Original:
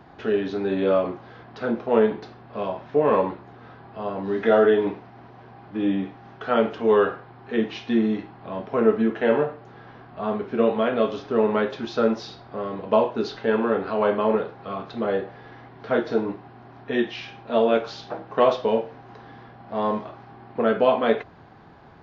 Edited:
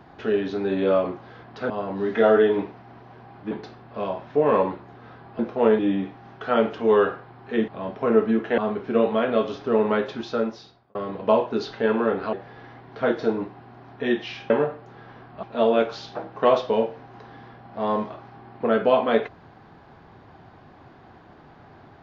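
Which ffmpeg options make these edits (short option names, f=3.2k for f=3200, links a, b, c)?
-filter_complex "[0:a]asplit=11[a][b][c][d][e][f][g][h][i][j][k];[a]atrim=end=1.702[l];[b]atrim=start=3.978:end=5.792[m];[c]atrim=start=2.098:end=3.982[n];[d]atrim=start=1.698:end=2.102[o];[e]atrim=start=5.788:end=7.682[p];[f]atrim=start=8.388:end=9.292[q];[g]atrim=start=10.218:end=12.59,asetpts=PTS-STARTPTS,afade=t=out:st=1.522:d=0.85[r];[h]atrim=start=12.59:end=13.972,asetpts=PTS-STARTPTS,afade=t=in:d=0.004:c=hsin[s];[i]atrim=start=15.208:end=17.382[t];[j]atrim=start=9.288:end=10.222[u];[k]atrim=start=17.378[v];[l][m]acrossfade=d=0.004:c1=hsin:c2=hsin[w];[w][n]acrossfade=d=0.004:c1=hsin:c2=hsin[x];[x][o]acrossfade=d=0.004:c1=hsin:c2=hsin[y];[y][p]acrossfade=d=0.004:c1=hsin:c2=hsin[z];[z][q]acrossfade=d=0.004:c1=hsin:c2=hsin[aa];[r][s]concat=n=2:v=0:a=1[ab];[aa][ab]acrossfade=d=0.004:c1=hsin:c2=hsin[ac];[ac][t]acrossfade=d=0.004:c1=hsin:c2=hsin[ad];[ad][u]acrossfade=d=0.004:c1=hsin:c2=hsin[ae];[ae][v]acrossfade=d=0.004:c1=hsin:c2=hsin"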